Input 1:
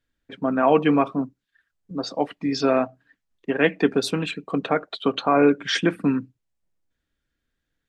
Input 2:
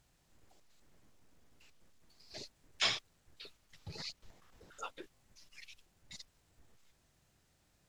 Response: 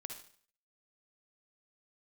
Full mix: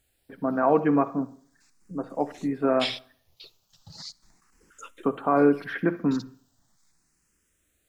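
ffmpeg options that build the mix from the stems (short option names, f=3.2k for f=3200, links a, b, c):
-filter_complex "[0:a]lowpass=f=1.8k:w=0.5412,lowpass=f=1.8k:w=1.3066,volume=-6dB,asplit=3[a][b][c];[a]atrim=end=3.45,asetpts=PTS-STARTPTS,afade=t=out:st=3.446:d=0.004:c=hsin[d];[b]atrim=start=3.45:end=5.03,asetpts=PTS-STARTPTS,volume=0[e];[c]atrim=start=5.03,asetpts=PTS-STARTPTS,afade=t=in:d=0.004:c=hsin[f];[d][e][f]concat=n=3:v=0:a=1,asplit=2[g][h];[h]volume=-3.5dB[i];[1:a]highshelf=f=4.7k:g=9.5,asplit=2[j][k];[k]afreqshift=0.38[l];[j][l]amix=inputs=2:normalize=1,volume=0.5dB,asplit=2[m][n];[n]volume=-17.5dB[o];[2:a]atrim=start_sample=2205[p];[i][o]amix=inputs=2:normalize=0[q];[q][p]afir=irnorm=-1:irlink=0[r];[g][m][r]amix=inputs=3:normalize=0"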